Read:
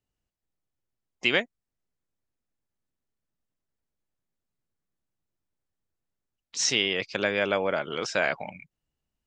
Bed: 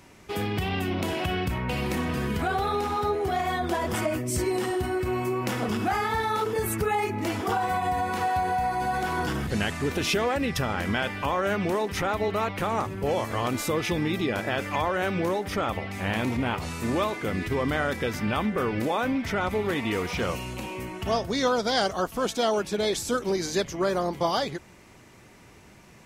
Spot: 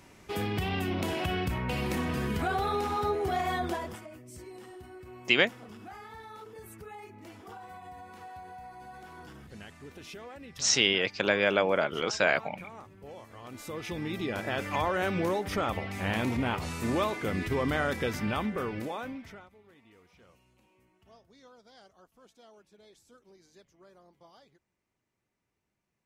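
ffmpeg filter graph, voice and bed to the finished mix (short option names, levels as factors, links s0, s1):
-filter_complex "[0:a]adelay=4050,volume=1.06[s0];[1:a]volume=5.31,afade=t=out:st=3.61:d=0.39:silence=0.141254,afade=t=in:st=13.42:d=1.4:silence=0.133352,afade=t=out:st=18.08:d=1.41:silence=0.0334965[s1];[s0][s1]amix=inputs=2:normalize=0"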